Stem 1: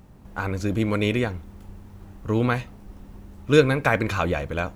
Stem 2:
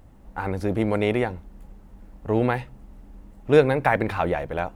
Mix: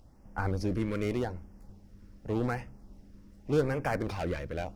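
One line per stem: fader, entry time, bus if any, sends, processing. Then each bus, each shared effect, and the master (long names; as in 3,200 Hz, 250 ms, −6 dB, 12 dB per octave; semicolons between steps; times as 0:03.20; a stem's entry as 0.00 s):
−4.0 dB, 0.00 s, no send, downward expander −34 dBFS; spectral tilt −3 dB per octave; automatic ducking −12 dB, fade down 0.85 s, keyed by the second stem
−7.0 dB, 0.00 s, polarity flipped, no send, parametric band 5,300 Hz +11.5 dB 0.55 octaves; gain into a clipping stage and back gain 23.5 dB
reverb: not used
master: auto-filter notch sine 0.85 Hz 720–4,000 Hz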